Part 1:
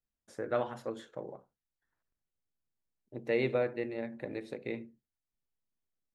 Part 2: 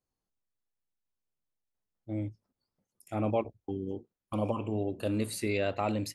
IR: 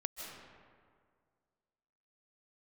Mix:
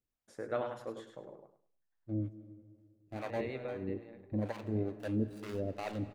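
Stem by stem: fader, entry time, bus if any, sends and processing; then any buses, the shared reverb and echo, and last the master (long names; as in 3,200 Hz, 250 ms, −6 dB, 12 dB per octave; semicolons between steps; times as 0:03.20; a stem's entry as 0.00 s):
0:03.63 −4 dB → 0:04.40 −15 dB, 0.00 s, no send, echo send −7.5 dB, automatic ducking −15 dB, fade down 1.10 s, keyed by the second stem
−1.5 dB, 0.00 s, send −9 dB, no echo send, running median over 41 samples; two-band tremolo in antiphase 2.3 Hz, depth 100%, crossover 570 Hz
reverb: on, RT60 2.0 s, pre-delay 115 ms
echo: repeating echo 102 ms, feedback 24%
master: no processing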